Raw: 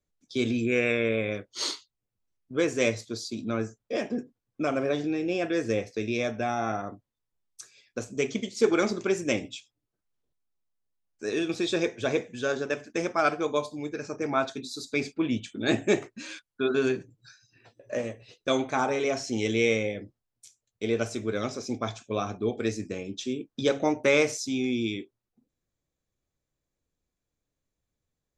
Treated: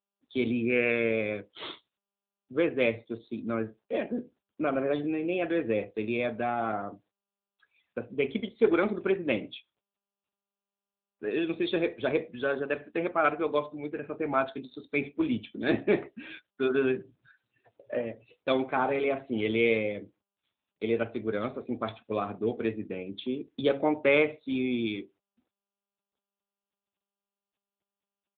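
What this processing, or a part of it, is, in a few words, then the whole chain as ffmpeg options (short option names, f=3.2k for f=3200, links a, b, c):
mobile call with aggressive noise cancelling: -filter_complex "[0:a]asettb=1/sr,asplit=3[a][b][c];[a]atrim=end=11.544[d];[b]atrim=start=11.54:end=12.27,asetpts=PTS-STARTPTS,afade=t=in:d=0.004:c=qsin,afade=t=out:st=0.726:d=0.004:c=qsin,equalizer=f=6k:t=o:w=0.25:g=-3[e];[c]atrim=start=12.266[f];[d][e]acrossfade=d=0.004:c1=hsin:c2=qsin[g];[g][f]acrossfade=d=0.004:c1=qsin:c2=hsin,highpass=f=150:p=1,asplit=2[h][i];[i]adelay=69,lowpass=f=1.1k:p=1,volume=-23dB,asplit=2[j][k];[k]adelay=69,lowpass=f=1.1k:p=1,volume=0.24[l];[h][j][l]amix=inputs=3:normalize=0,afftdn=nr=17:nf=-50" -ar 8000 -c:a libopencore_amrnb -b:a 10200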